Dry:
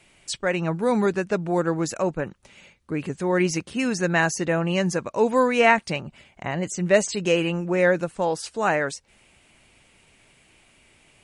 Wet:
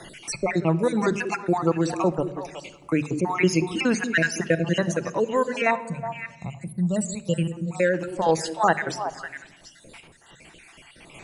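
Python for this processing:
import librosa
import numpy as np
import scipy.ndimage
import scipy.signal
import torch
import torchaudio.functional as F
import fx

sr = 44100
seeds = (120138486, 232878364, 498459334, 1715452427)

y = fx.spec_dropout(x, sr, seeds[0], share_pct=52)
y = fx.hum_notches(y, sr, base_hz=50, count=4)
y = fx.spec_box(y, sr, start_s=5.75, length_s=2.0, low_hz=230.0, high_hz=6700.0, gain_db=-15)
y = fx.rider(y, sr, range_db=5, speed_s=0.5)
y = fx.tremolo_random(y, sr, seeds[1], hz=3.5, depth_pct=55)
y = fx.echo_stepped(y, sr, ms=184, hz=310.0, octaves=1.4, feedback_pct=70, wet_db=-8.0)
y = fx.room_shoebox(y, sr, seeds[2], volume_m3=3900.0, walls='furnished', distance_m=0.75)
y = fx.band_squash(y, sr, depth_pct=40)
y = y * 10.0 ** (5.0 / 20.0)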